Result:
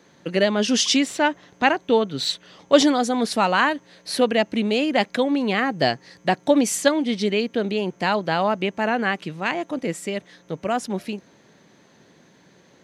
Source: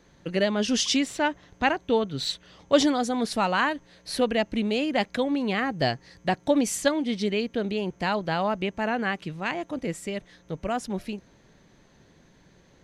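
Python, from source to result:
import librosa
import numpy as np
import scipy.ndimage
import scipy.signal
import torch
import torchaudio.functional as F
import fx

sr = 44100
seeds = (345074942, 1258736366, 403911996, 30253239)

y = scipy.signal.sosfilt(scipy.signal.butter(2, 170.0, 'highpass', fs=sr, output='sos'), x)
y = y * 10.0 ** (5.0 / 20.0)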